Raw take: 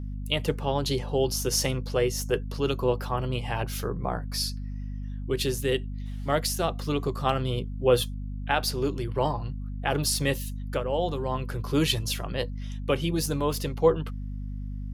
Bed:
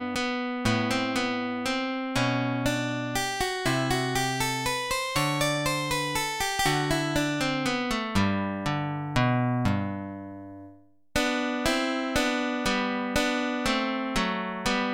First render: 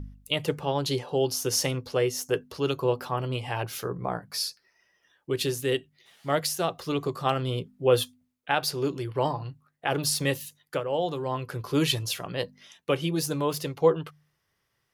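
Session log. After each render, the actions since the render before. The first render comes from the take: de-hum 50 Hz, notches 5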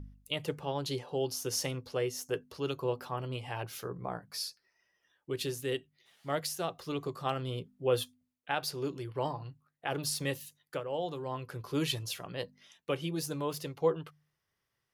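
gain -7.5 dB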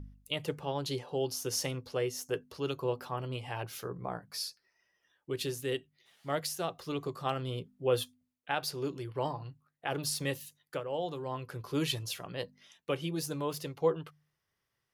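nothing audible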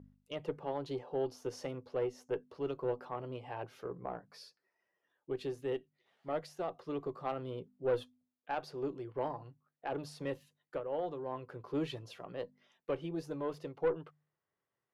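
band-pass 500 Hz, Q 0.59; tube stage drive 24 dB, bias 0.3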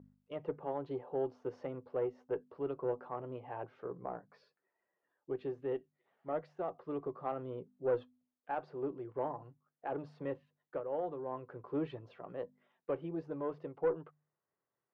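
LPF 1600 Hz 12 dB/oct; low shelf 82 Hz -10 dB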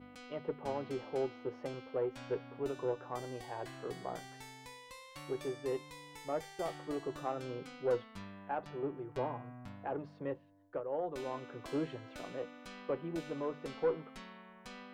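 add bed -24 dB

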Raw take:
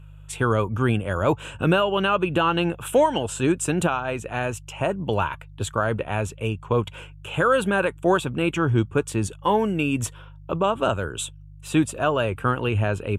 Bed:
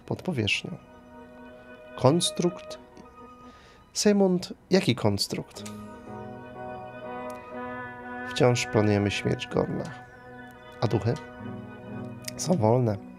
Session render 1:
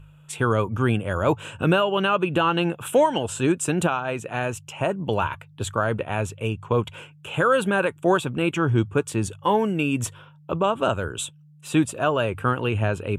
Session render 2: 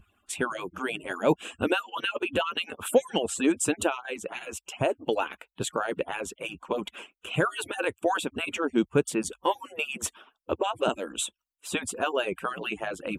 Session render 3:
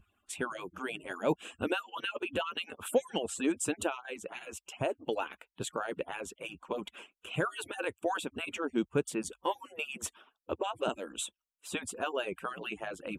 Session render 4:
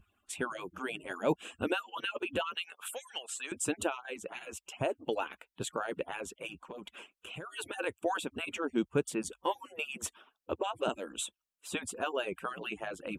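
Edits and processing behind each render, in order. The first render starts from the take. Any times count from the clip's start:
de-hum 50 Hz, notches 2
median-filter separation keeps percussive; dynamic EQ 1200 Hz, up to -7 dB, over -38 dBFS, Q 1.8
gain -6.5 dB
2.55–3.52 HPF 1300 Hz; 6.54–7.57 compressor 5:1, threshold -41 dBFS

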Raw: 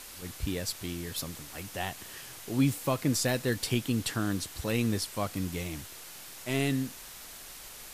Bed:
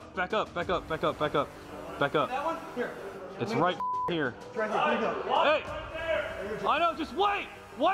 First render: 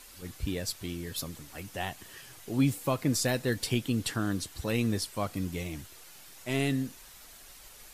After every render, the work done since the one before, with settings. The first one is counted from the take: denoiser 7 dB, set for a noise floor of -47 dBFS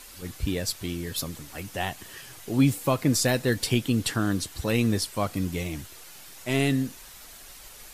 gain +5 dB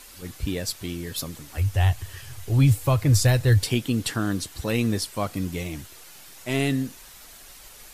1.57–3.63 resonant low shelf 140 Hz +12.5 dB, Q 3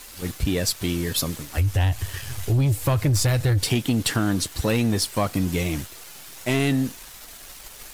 sample leveller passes 2; compressor, threshold -18 dBFS, peak gain reduction 7 dB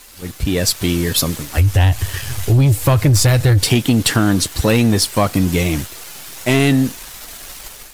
AGC gain up to 8.5 dB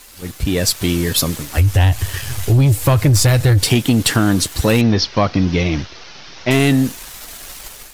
4.81–6.51 steep low-pass 5900 Hz 72 dB/oct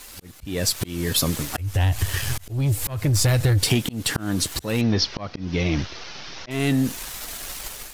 auto swell 0.432 s; compressor 3:1, threshold -18 dBFS, peak gain reduction 6.5 dB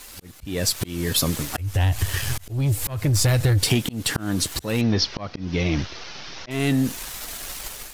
nothing audible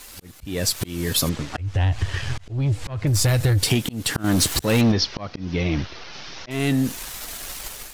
1.29–3.07 air absorption 120 m; 4.24–4.92 sample leveller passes 2; 5.53–6.13 air absorption 82 m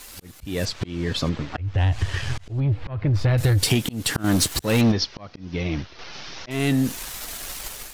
0.65–1.78 air absorption 150 m; 2.6–3.38 air absorption 320 m; 4.37–5.99 upward expander, over -30 dBFS

